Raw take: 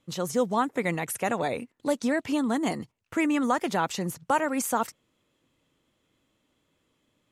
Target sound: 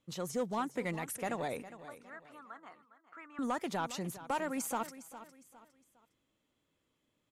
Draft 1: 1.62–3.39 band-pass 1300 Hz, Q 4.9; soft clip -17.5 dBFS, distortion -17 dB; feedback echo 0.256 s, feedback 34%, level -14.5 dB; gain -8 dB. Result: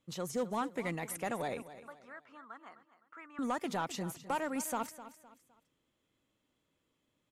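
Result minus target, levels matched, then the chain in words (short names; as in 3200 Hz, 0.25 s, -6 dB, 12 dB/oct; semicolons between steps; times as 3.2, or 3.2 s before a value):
echo 0.152 s early
1.62–3.39 band-pass 1300 Hz, Q 4.9; soft clip -17.5 dBFS, distortion -17 dB; feedback echo 0.408 s, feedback 34%, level -14.5 dB; gain -8 dB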